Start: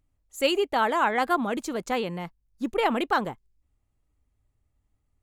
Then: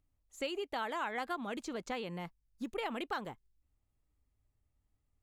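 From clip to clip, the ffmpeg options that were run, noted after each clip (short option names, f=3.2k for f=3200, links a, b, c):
-filter_complex "[0:a]acrossover=split=1900|6600[a][b][c];[a]acompressor=threshold=-31dB:ratio=4[d];[b]acompressor=threshold=-37dB:ratio=4[e];[c]acompressor=threshold=-59dB:ratio=4[f];[d][e][f]amix=inputs=3:normalize=0,volume=-6dB"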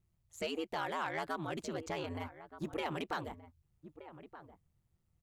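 -filter_complex "[0:a]aeval=exprs='val(0)*sin(2*PI*79*n/s)':c=same,asplit=2[a][b];[b]adelay=1224,volume=-14dB,highshelf=f=4k:g=-27.6[c];[a][c]amix=inputs=2:normalize=0,asoftclip=type=tanh:threshold=-30.5dB,volume=4dB"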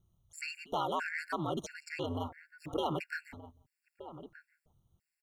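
-af "aecho=1:1:174:0.0708,afftfilt=real='re*gt(sin(2*PI*1.5*pts/sr)*(1-2*mod(floor(b*sr/1024/1400),2)),0)':imag='im*gt(sin(2*PI*1.5*pts/sr)*(1-2*mod(floor(b*sr/1024/1400),2)),0)':win_size=1024:overlap=0.75,volume=5dB"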